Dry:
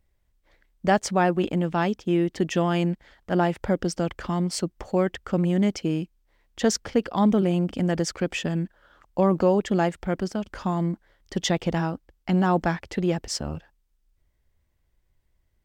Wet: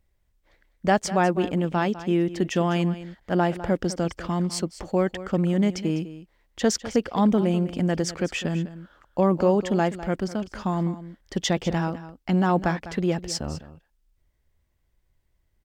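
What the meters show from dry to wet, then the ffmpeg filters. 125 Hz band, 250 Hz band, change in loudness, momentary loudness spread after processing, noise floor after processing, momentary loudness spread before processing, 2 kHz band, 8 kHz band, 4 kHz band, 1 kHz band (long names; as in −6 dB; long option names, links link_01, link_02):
0.0 dB, 0.0 dB, 0.0 dB, 9 LU, −70 dBFS, 9 LU, 0.0 dB, 0.0 dB, 0.0 dB, 0.0 dB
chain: -af "aecho=1:1:202:0.188"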